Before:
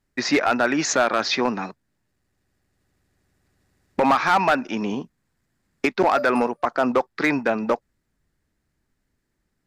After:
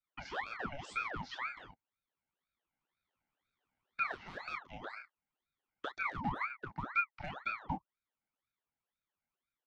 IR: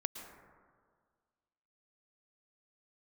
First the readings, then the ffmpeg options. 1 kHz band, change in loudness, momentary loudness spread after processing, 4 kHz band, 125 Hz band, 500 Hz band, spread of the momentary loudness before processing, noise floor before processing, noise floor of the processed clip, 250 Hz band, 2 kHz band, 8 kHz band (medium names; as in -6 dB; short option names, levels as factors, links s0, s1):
-18.5 dB, -18.0 dB, 12 LU, -21.5 dB, -11.5 dB, -28.5 dB, 9 LU, -75 dBFS, under -85 dBFS, -24.5 dB, -14.5 dB, under -30 dB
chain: -filter_complex "[0:a]acrossover=split=520|3500[s0][s1][s2];[s1]acompressor=threshold=0.0158:ratio=4[s3];[s0][s3][s2]amix=inputs=3:normalize=0,asplit=3[s4][s5][s6];[s4]bandpass=f=530:t=q:w=8,volume=1[s7];[s5]bandpass=f=1840:t=q:w=8,volume=0.501[s8];[s6]bandpass=f=2480:t=q:w=8,volume=0.355[s9];[s7][s8][s9]amix=inputs=3:normalize=0,asplit=2[s10][s11];[s11]adelay=29,volume=0.501[s12];[s10][s12]amix=inputs=2:normalize=0,aeval=exprs='val(0)*sin(2*PI*1100*n/s+1100*0.75/2*sin(2*PI*2*n/s))':c=same,volume=0.75"